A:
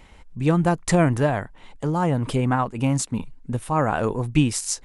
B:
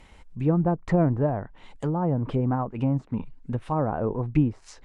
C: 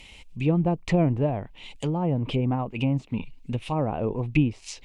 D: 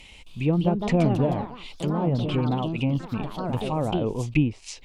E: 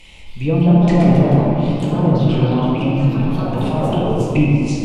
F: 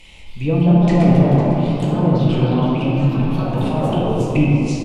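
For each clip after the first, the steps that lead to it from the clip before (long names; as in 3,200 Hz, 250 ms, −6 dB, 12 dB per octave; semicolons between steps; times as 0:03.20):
treble cut that deepens with the level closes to 800 Hz, closed at −18.5 dBFS; level −2.5 dB
high shelf with overshoot 2,000 Hz +8.5 dB, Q 3
delay with pitch and tempo change per echo 265 ms, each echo +3 semitones, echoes 3, each echo −6 dB
rectangular room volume 130 cubic metres, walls hard, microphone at 0.73 metres; level +1 dB
single-tap delay 505 ms −12.5 dB; level −1 dB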